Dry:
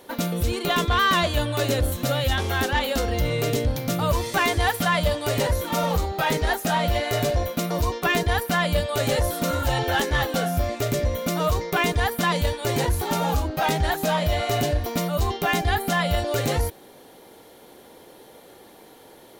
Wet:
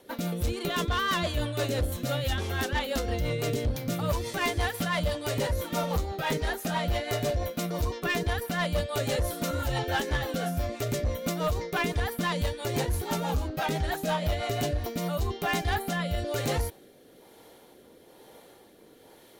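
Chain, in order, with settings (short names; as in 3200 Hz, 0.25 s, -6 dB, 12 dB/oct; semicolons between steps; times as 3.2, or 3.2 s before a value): rotary speaker horn 6 Hz, later 1.1 Hz, at 14.51; overloaded stage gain 18 dB; gain -3.5 dB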